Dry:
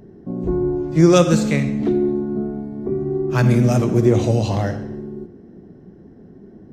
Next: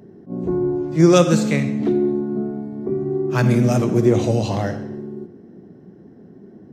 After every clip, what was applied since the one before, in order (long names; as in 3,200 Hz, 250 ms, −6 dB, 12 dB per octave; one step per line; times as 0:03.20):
high-pass filter 110 Hz 12 dB per octave
level that may rise only so fast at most 260 dB per second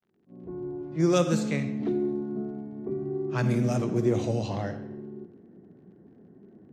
fade in at the beginning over 1.28 s
surface crackle 47 per second −44 dBFS
low-pass that shuts in the quiet parts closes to 2,200 Hz, open at −11 dBFS
level −9 dB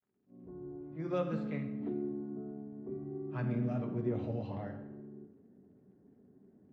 high-frequency loss of the air 410 metres
notch comb filter 170 Hz
convolution reverb RT60 1.0 s, pre-delay 3 ms, DRR 8.5 dB
level −8 dB